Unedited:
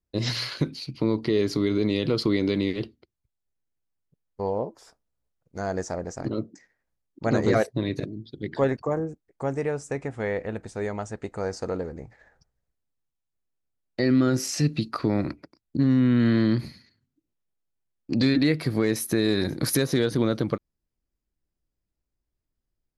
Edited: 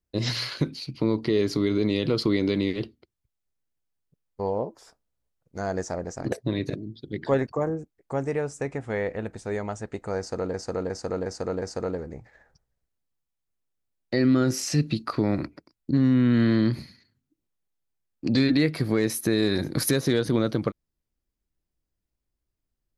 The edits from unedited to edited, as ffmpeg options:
ffmpeg -i in.wav -filter_complex "[0:a]asplit=6[link_01][link_02][link_03][link_04][link_05][link_06];[link_01]atrim=end=6.322[link_07];[link_02]atrim=start=7.618:end=11.842[link_08];[link_03]atrim=start=11.478:end=11.842[link_09];[link_04]atrim=start=11.478:end=11.842[link_10];[link_05]atrim=start=11.478:end=11.842[link_11];[link_06]atrim=start=11.478[link_12];[link_07][link_08]acrossfade=duration=0.004:curve1=hsin:curve2=hsin[link_13];[link_13][link_09]acrossfade=duration=0.004:curve1=hsin:curve2=hsin[link_14];[link_14][link_10]acrossfade=duration=0.004:curve1=hsin:curve2=hsin[link_15];[link_15][link_11]acrossfade=duration=0.004:curve1=hsin:curve2=hsin[link_16];[link_16][link_12]acrossfade=duration=0.004:curve1=hsin:curve2=hsin" out.wav

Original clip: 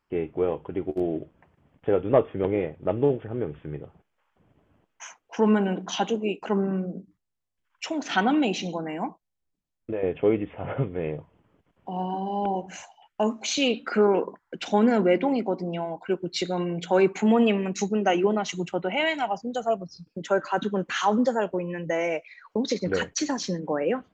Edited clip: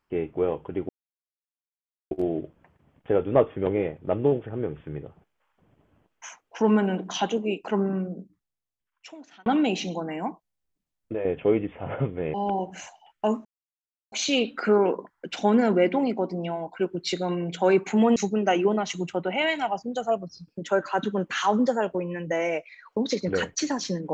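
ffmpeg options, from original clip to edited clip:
ffmpeg -i in.wav -filter_complex "[0:a]asplit=6[link_01][link_02][link_03][link_04][link_05][link_06];[link_01]atrim=end=0.89,asetpts=PTS-STARTPTS,afade=type=out:start_time=0.886:duration=0.004:curve=hsin,apad=pad_dur=1.22[link_07];[link_02]atrim=start=0.89:end=8.24,asetpts=PTS-STARTPTS,afade=type=in:duration=0.004:curve=hsin,afade=type=out:start_time=5.76:duration=1.59[link_08];[link_03]atrim=start=8.24:end=11.122,asetpts=PTS-STARTPTS,afade=type=in:duration=0.004:curve=hsin[link_09];[link_04]atrim=start=12.298:end=13.41,asetpts=PTS-STARTPTS,afade=type=out:start_time=1.108:duration=0.004:curve=hsin,apad=pad_dur=0.67[link_10];[link_05]atrim=start=13.41:end=17.452,asetpts=PTS-STARTPTS,afade=type=in:duration=0.004:curve=hsin[link_11];[link_06]atrim=start=17.748[link_12];[link_07][link_08][link_09]concat=n=3:v=0:a=1[link_13];[link_10][link_11]concat=n=2:v=0:a=1[link_14];[link_13][link_14]acrossfade=duration=0.004:curve1=hsin:curve2=hsin[link_15];[link_15][link_12]acrossfade=duration=0.004:curve1=hsin:curve2=hsin" out.wav

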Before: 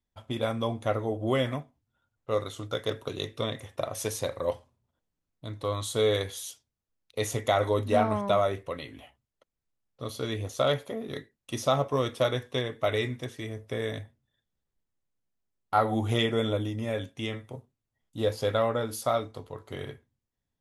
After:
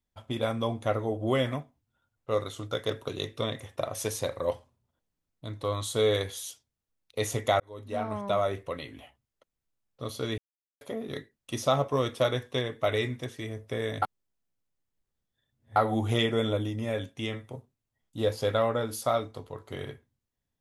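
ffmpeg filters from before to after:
ffmpeg -i in.wav -filter_complex "[0:a]asplit=6[link_01][link_02][link_03][link_04][link_05][link_06];[link_01]atrim=end=7.6,asetpts=PTS-STARTPTS,afade=type=out:start_time=7.596:duration=0.004:curve=hsin[link_07];[link_02]atrim=start=7.6:end=10.38,asetpts=PTS-STARTPTS,afade=type=in:duration=1.04,afade=type=out:start_time=2.776:duration=0.004:curve=hsin[link_08];[link_03]atrim=start=10.38:end=10.81,asetpts=PTS-STARTPTS,volume=0[link_09];[link_04]atrim=start=10.81:end=14.022,asetpts=PTS-STARTPTS,afade=type=in:duration=0.004:curve=hsin[link_10];[link_05]atrim=start=14.018:end=15.762,asetpts=PTS-STARTPTS,areverse[link_11];[link_06]atrim=start=15.758[link_12];[link_07][link_08][link_09][link_10]concat=n=4:v=0:a=1[link_13];[link_13][link_11]acrossfade=duration=0.004:curve1=hsin:curve2=hsin[link_14];[link_14][link_12]acrossfade=duration=0.004:curve1=hsin:curve2=hsin" out.wav

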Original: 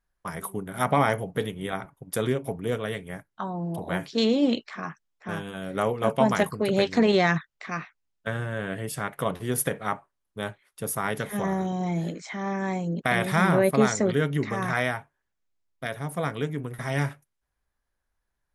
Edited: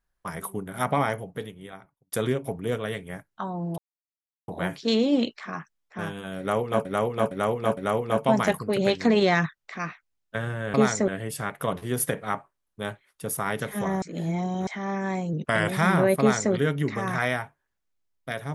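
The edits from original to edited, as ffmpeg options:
ffmpeg -i in.wav -filter_complex "[0:a]asplit=12[link_01][link_02][link_03][link_04][link_05][link_06][link_07][link_08][link_09][link_10][link_11][link_12];[link_01]atrim=end=2.12,asetpts=PTS-STARTPTS,afade=type=out:start_time=0.62:duration=1.5[link_13];[link_02]atrim=start=2.12:end=3.78,asetpts=PTS-STARTPTS,afade=type=in:duration=0.004:curve=hsin,afade=type=out:start_time=1.656:duration=0.004:curve=hsin,apad=pad_dur=0.7[link_14];[link_03]atrim=start=3.78:end=6.152,asetpts=PTS-STARTPTS,afade=type=in:duration=0.004:curve=hsin[link_15];[link_04]atrim=start=5.688:end=6.152[link_16];[link_05]atrim=start=5.688:end=6.152[link_17];[link_06]atrim=start=5.688:end=8.662[link_18];[link_07]atrim=start=13.738:end=14.082[link_19];[link_08]atrim=start=8.658:end=11.602[link_20];[link_09]atrim=start=11.598:end=12.252,asetpts=PTS-STARTPTS,areverse[link_21];[link_10]atrim=start=12.248:end=12.914[link_22];[link_11]atrim=start=12.91:end=13.23,asetpts=PTS-STARTPTS,asetrate=40131,aresample=44100[link_23];[link_12]atrim=start=13.226[link_24];[link_13][link_14][link_15]concat=n=3:v=0:a=1[link_25];[link_25][link_16]acrossfade=duration=0.004:curve1=hsin:curve2=hsin[link_26];[link_26][link_17]acrossfade=duration=0.004:curve1=hsin:curve2=hsin[link_27];[link_27][link_18]acrossfade=duration=0.004:curve1=hsin:curve2=hsin[link_28];[link_28][link_19]acrossfade=duration=0.004:curve1=hsin:curve2=hsin[link_29];[link_29][link_20]acrossfade=duration=0.004:curve1=hsin:curve2=hsin[link_30];[link_30][link_21]acrossfade=duration=0.004:curve1=hsin:curve2=hsin[link_31];[link_31][link_22]acrossfade=duration=0.004:curve1=hsin:curve2=hsin[link_32];[link_32][link_23]acrossfade=duration=0.004:curve1=hsin:curve2=hsin[link_33];[link_33][link_24]acrossfade=duration=0.004:curve1=hsin:curve2=hsin" out.wav

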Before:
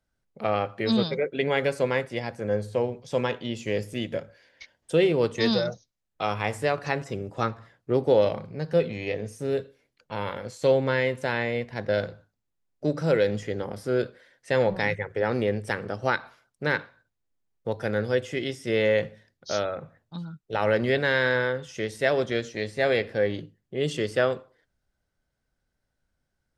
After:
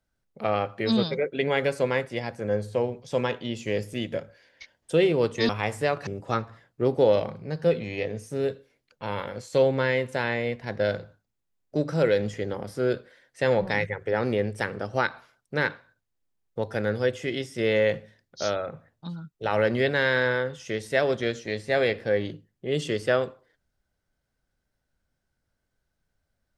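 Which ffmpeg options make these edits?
ffmpeg -i in.wav -filter_complex "[0:a]asplit=3[link_01][link_02][link_03];[link_01]atrim=end=5.492[link_04];[link_02]atrim=start=6.298:end=6.882[link_05];[link_03]atrim=start=7.158[link_06];[link_04][link_05]acrossfade=duration=0.004:curve1=hsin:curve2=hsin[link_07];[link_07][link_06]acrossfade=duration=0.004:curve1=hsin:curve2=hsin" out.wav

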